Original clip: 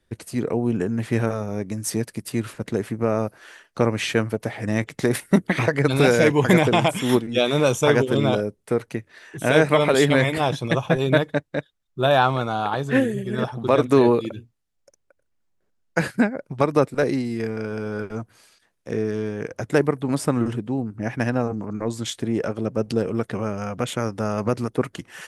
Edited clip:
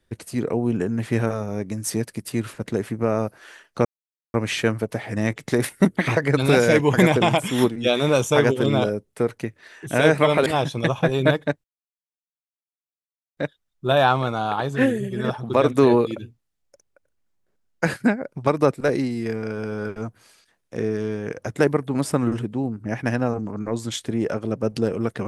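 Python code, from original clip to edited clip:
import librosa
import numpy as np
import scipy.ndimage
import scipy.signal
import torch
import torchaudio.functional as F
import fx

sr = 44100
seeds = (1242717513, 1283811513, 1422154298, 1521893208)

y = fx.edit(x, sr, fx.insert_silence(at_s=3.85, length_s=0.49),
    fx.cut(start_s=9.97, length_s=0.36),
    fx.insert_silence(at_s=11.51, length_s=1.73), tone=tone)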